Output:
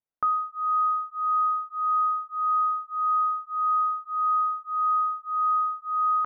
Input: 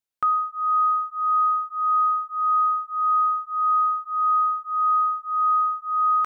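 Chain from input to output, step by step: LPF 1200 Hz 12 dB/oct; notches 50/100/150/200/250/300/350/400/450/500 Hz; transient shaper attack +1 dB, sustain -3 dB

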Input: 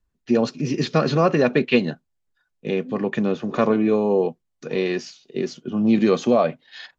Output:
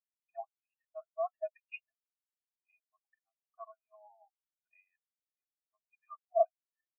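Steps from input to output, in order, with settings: FFT band-pass 620–3400 Hz; transient shaper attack +8 dB, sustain -1 dB; reverse; compressor 5:1, threshold -26 dBFS, peak gain reduction 14 dB; reverse; random-step tremolo 3.5 Hz; spectral expander 4:1

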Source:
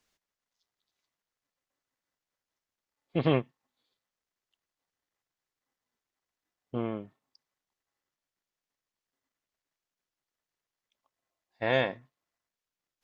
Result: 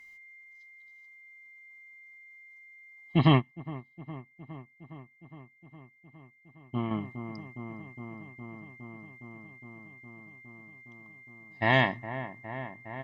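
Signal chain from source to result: comb 1 ms, depth 87%; whine 2100 Hz -53 dBFS; dark delay 0.412 s, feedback 82%, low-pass 1600 Hz, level -12 dB; 3.29–6.91 upward expander 1.5:1, over -43 dBFS; gain +3.5 dB

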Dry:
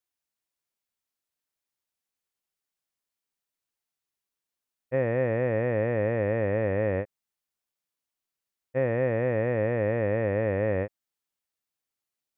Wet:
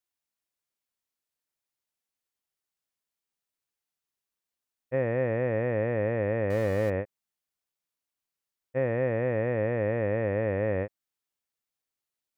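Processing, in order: 6.5–6.9 zero-crossing step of -35 dBFS; gain -1.5 dB

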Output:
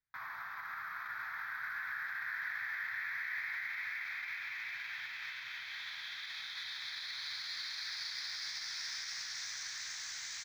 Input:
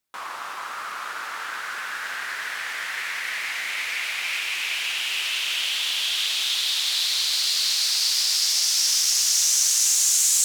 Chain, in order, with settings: air absorption 490 m; doubler 17 ms -10.5 dB; limiter -29.5 dBFS, peak gain reduction 8 dB; fixed phaser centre 1200 Hz, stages 4; careless resampling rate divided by 3×, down none, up hold; EQ curve 140 Hz 0 dB, 210 Hz -14 dB, 1200 Hz -10 dB, 1800 Hz +4 dB, 6200 Hz +7 dB, 9400 Hz -18 dB, 15000 Hz -13 dB; gain +1 dB

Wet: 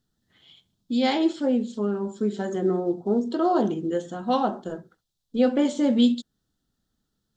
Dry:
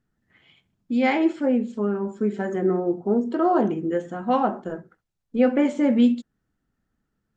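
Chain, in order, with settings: resonant high shelf 2900 Hz +7.5 dB, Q 3; gain -1.5 dB

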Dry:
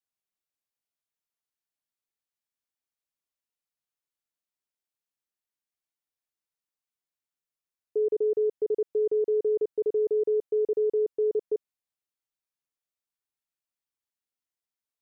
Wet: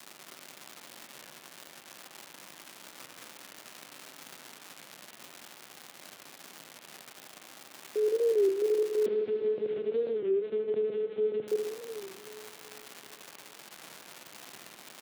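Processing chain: limiter -25 dBFS, peak gain reduction 4 dB; crackle 360/s -33 dBFS; low shelf 290 Hz -6.5 dB; feedback echo 93 ms, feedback 15%, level -23.5 dB; 9.06–11.48 LPC vocoder at 8 kHz pitch kept; HPF 140 Hz 24 dB/oct; tilt shelf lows +3 dB, about 640 Hz; notch 450 Hz, Q 14; reverb RT60 3.2 s, pre-delay 65 ms, DRR 4.5 dB; record warp 33 1/3 rpm, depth 160 cents; gain +3.5 dB

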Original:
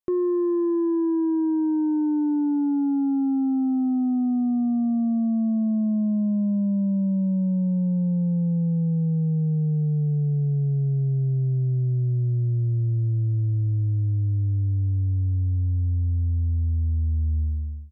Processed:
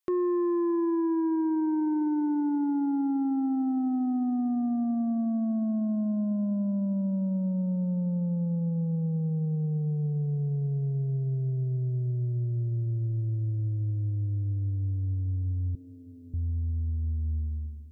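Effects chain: 15.75–16.34 steep high-pass 210 Hz; tilt shelf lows -6.5 dB, about 690 Hz; tape echo 0.615 s, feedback 80%, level -19 dB, low-pass 1000 Hz

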